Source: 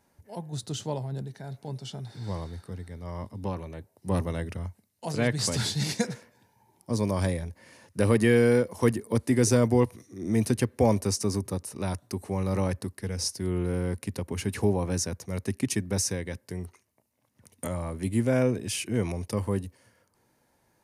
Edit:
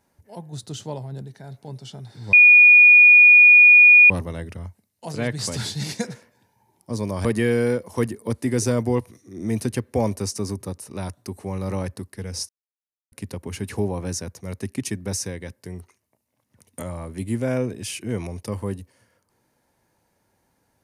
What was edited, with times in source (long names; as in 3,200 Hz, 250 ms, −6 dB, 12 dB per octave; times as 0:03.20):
0:02.33–0:04.10: beep over 2,450 Hz −7 dBFS
0:07.25–0:08.10: remove
0:13.34–0:13.97: silence